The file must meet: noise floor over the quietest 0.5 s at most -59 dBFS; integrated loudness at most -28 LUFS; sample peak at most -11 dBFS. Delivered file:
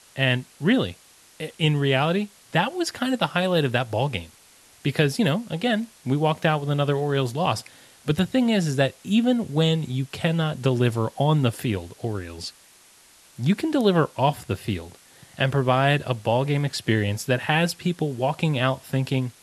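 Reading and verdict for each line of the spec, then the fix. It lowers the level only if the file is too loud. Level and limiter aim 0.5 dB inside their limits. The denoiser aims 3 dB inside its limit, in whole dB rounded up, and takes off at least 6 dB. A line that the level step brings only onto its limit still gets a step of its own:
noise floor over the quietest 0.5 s -53 dBFS: fail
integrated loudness -23.5 LUFS: fail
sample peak -6.0 dBFS: fail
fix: denoiser 6 dB, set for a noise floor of -53 dBFS; gain -5 dB; limiter -11.5 dBFS

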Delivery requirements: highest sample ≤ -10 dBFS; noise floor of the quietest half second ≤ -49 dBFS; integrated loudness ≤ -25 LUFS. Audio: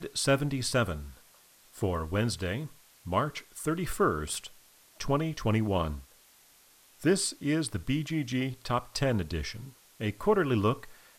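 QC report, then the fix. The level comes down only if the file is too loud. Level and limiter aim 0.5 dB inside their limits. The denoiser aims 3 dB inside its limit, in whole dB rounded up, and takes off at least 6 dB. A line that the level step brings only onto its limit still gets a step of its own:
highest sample -12.5 dBFS: OK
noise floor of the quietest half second -60 dBFS: OK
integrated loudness -30.5 LUFS: OK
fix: none

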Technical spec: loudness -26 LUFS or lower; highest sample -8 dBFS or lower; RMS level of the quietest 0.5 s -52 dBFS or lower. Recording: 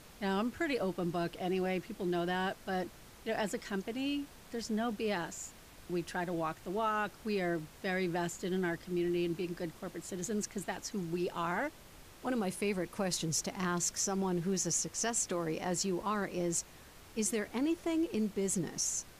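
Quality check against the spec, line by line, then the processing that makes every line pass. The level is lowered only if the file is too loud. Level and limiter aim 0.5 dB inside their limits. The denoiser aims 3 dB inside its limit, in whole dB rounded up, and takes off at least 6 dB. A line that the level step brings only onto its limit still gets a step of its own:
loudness -35.5 LUFS: OK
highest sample -20.0 dBFS: OK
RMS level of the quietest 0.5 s -55 dBFS: OK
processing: none

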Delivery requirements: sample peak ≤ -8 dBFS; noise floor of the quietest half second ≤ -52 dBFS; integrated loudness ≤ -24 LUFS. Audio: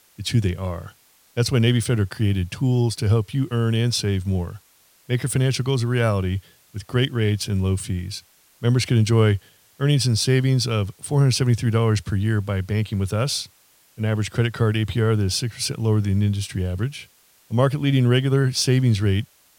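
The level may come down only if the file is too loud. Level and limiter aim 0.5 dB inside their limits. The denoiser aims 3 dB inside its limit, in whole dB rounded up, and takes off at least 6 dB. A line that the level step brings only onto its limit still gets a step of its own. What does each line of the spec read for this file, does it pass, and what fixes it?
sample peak -4.5 dBFS: fail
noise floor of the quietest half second -57 dBFS: OK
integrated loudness -21.5 LUFS: fail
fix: gain -3 dB; limiter -8.5 dBFS

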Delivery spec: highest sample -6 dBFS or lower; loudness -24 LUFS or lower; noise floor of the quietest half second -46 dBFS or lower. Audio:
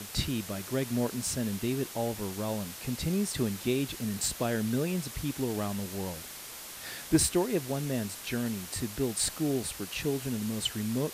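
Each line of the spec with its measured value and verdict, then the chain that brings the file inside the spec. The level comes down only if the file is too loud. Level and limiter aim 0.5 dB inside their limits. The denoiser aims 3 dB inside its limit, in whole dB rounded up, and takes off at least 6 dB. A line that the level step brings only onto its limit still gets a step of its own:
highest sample -13.5 dBFS: OK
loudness -31.5 LUFS: OK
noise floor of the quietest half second -44 dBFS: fail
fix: denoiser 6 dB, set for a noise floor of -44 dBFS

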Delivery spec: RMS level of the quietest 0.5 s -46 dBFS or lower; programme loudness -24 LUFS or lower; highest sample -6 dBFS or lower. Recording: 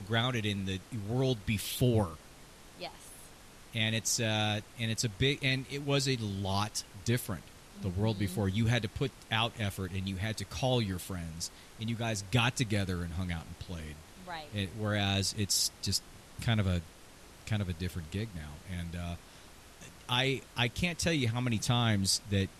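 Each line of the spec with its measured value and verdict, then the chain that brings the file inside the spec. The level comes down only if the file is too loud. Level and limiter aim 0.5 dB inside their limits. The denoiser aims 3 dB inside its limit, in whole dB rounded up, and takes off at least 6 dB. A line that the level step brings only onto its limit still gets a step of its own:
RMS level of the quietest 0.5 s -53 dBFS: OK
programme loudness -32.5 LUFS: OK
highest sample -14.5 dBFS: OK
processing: none

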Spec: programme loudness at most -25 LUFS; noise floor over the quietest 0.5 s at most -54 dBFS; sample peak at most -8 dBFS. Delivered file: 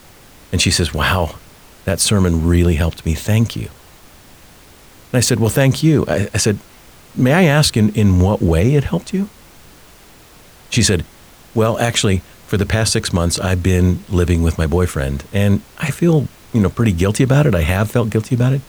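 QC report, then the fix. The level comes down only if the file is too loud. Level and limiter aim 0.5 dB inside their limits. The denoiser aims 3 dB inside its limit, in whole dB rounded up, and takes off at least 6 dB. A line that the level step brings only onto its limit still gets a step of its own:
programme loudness -16.0 LUFS: fail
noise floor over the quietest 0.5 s -44 dBFS: fail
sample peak -3.0 dBFS: fail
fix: denoiser 6 dB, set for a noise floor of -44 dBFS; gain -9.5 dB

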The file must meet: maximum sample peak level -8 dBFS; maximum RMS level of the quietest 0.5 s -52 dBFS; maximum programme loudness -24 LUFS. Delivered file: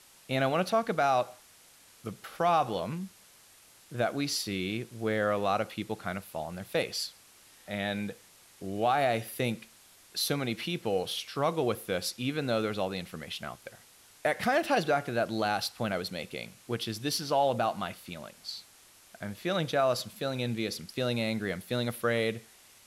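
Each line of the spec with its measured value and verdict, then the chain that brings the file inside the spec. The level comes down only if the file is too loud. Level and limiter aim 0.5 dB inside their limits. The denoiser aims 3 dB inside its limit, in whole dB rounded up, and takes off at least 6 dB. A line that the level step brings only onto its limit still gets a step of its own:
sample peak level -16.0 dBFS: OK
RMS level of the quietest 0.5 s -58 dBFS: OK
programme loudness -31.0 LUFS: OK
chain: none

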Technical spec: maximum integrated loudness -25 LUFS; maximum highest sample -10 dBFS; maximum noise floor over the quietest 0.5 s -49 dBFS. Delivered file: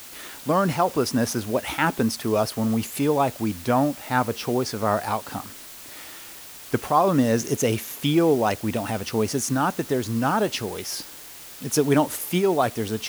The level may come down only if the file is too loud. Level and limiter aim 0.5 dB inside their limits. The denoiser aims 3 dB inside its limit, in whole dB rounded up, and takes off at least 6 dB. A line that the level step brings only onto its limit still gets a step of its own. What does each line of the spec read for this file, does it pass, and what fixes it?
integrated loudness -23.5 LUFS: fail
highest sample -6.5 dBFS: fail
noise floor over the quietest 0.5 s -42 dBFS: fail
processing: denoiser 8 dB, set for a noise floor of -42 dBFS; gain -2 dB; limiter -10.5 dBFS

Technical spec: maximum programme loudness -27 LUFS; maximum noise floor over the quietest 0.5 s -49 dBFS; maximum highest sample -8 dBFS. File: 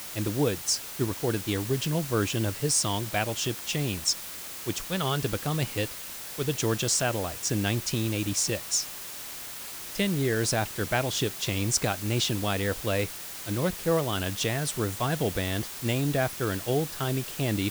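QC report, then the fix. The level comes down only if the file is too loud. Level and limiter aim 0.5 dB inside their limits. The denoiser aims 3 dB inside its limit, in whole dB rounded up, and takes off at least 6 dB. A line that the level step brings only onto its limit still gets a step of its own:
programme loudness -28.0 LUFS: OK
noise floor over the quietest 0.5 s -39 dBFS: fail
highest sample -11.0 dBFS: OK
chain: denoiser 13 dB, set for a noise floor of -39 dBFS

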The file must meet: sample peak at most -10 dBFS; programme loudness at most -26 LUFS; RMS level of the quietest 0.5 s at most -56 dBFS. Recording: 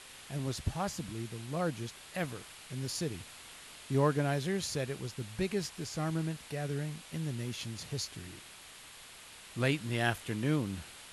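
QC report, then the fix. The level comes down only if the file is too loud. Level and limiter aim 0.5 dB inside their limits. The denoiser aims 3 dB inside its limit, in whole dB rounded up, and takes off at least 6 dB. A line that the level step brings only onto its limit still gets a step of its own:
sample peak -15.0 dBFS: OK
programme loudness -35.5 LUFS: OK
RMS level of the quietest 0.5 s -52 dBFS: fail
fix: denoiser 7 dB, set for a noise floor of -52 dBFS

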